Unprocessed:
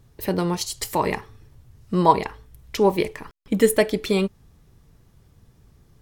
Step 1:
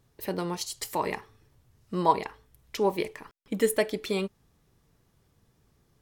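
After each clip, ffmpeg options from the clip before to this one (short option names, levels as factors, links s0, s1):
-af "lowshelf=f=150:g=-10,volume=0.501"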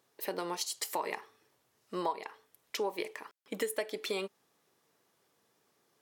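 -af "highpass=400,acompressor=threshold=0.0316:ratio=8"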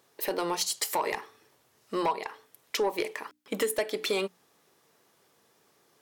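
-af "bandreject=f=60:t=h:w=6,bandreject=f=120:t=h:w=6,bandreject=f=180:t=h:w=6,bandreject=f=240:t=h:w=6,bandreject=f=300:t=h:w=6,aeval=exprs='0.133*sin(PI/2*2*val(0)/0.133)':c=same,volume=0.75"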